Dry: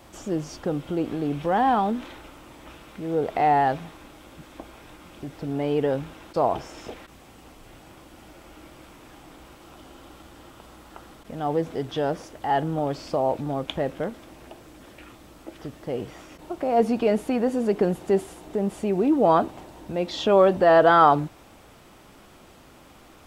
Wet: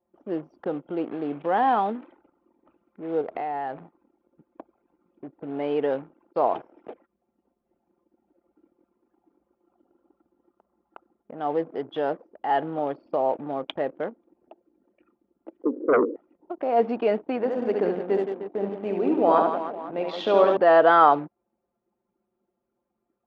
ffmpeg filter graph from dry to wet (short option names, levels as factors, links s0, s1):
-filter_complex "[0:a]asettb=1/sr,asplit=3[s0][s1][s2];[s0]atrim=end=3.214[s3];[s1]atrim=start=3.21:end=3.84,asetpts=PTS-STARTPTS,afade=t=in:d=0.004:c=qsin,afade=t=out:st=0.626:d=0.004:c=qsin,lowshelf=f=93:g=11.5,acompressor=threshold=0.0501:ratio=10:attack=3.2:release=140:knee=1:detection=peak[s4];[s2]atrim=start=3.836[s5];[s3][s4]acrossfade=d=0.004:c1=hsin:c2=qsin[s6];[s6][s5]acrossfade=d=0.004:c1=qsin:c2=hsin,asettb=1/sr,asplit=3[s7][s8][s9];[s7]atrim=end=15.634[s10];[s8]atrim=start=15.63:end=16.16,asetpts=PTS-STARTPTS,afade=t=in:d=0.004:c=qsin,afade=t=out:st=0.526:d=0.004:c=qsin,asuperpass=centerf=350:order=20:qfactor=1.1,acontrast=42,aeval=exprs='0.2*sin(PI/2*2.51*val(0)/0.2)':c=same[s11];[s9]atrim=start=16.156[s12];[s10][s11]acrossfade=d=0.004:c1=hsin:c2=qsin[s13];[s13][s12]acrossfade=d=0.004:c1=qsin:c2=hsin,asettb=1/sr,asplit=3[s14][s15][s16];[s14]atrim=end=17.364[s17];[s15]atrim=start=17.36:end=20.57,asetpts=PTS-STARTPTS,afade=t=in:d=0.004:c=qsin,afade=t=out:st=3.206:d=0.004:c=qsin,aecho=1:1:70|168|305.2|497.3|766.2:0.631|0.398|0.251|0.158|0.1,atrim=end_sample=141561,tremolo=f=98:d=0.333[s18];[s16]atrim=start=20.566[s19];[s17][s18]acrossfade=d=0.004:c1=hsin:c2=qsin[s20];[s20][s19]acrossfade=d=0.004:c1=qsin:c2=hsin,lowpass=3200,anlmdn=2.51,highpass=300"